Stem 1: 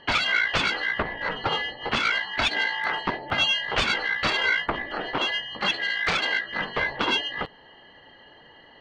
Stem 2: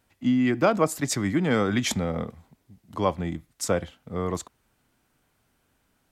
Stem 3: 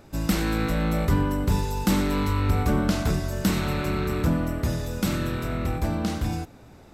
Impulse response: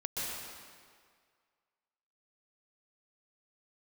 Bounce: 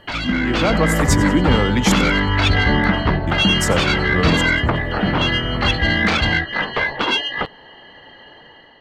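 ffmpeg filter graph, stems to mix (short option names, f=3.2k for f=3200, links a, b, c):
-filter_complex "[0:a]volume=0.5dB[a];[1:a]volume=1.5dB,asplit=3[b][c][d];[b]atrim=end=2.1,asetpts=PTS-STARTPTS,afade=t=out:st=2.096:d=0.004:c=hsin[e];[c]atrim=start=2.1:end=3.27,asetpts=PTS-STARTPTS,volume=0[f];[d]atrim=start=3.27,asetpts=PTS-STARTPTS,afade=t=in:d=0.004:c=hsin[g];[e][f][g]concat=n=3:v=0:a=1,asplit=2[h][i];[i]volume=-17.5dB[j];[2:a]lowpass=f=2.2k:w=0.5412,lowpass=f=2.2k:w=1.3066,volume=-1.5dB[k];[a][h]amix=inputs=2:normalize=0,asoftclip=type=tanh:threshold=-10dB,alimiter=limit=-15.5dB:level=0:latency=1:release=263,volume=0dB[l];[j]aecho=0:1:92|184|276|368|460|552:1|0.43|0.185|0.0795|0.0342|0.0147[m];[k][l][m]amix=inputs=3:normalize=0,dynaudnorm=f=230:g=5:m=7.5dB"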